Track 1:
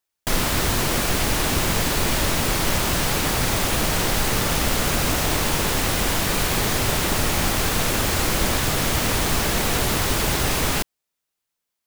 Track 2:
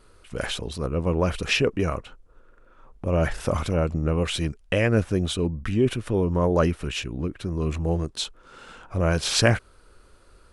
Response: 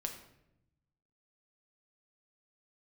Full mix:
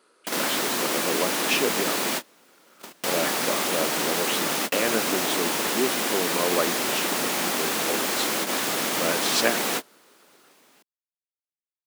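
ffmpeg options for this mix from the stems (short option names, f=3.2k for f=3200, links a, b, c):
-filter_complex "[0:a]volume=-2.5dB[a];[1:a]lowshelf=f=160:g=-11,volume=-2dB,asplit=2[b][c];[c]apad=whole_len=523106[d];[a][d]sidechaingate=range=-32dB:threshold=-53dB:ratio=16:detection=peak[e];[e][b]amix=inputs=2:normalize=0,highpass=f=220:w=0.5412,highpass=f=220:w=1.3066"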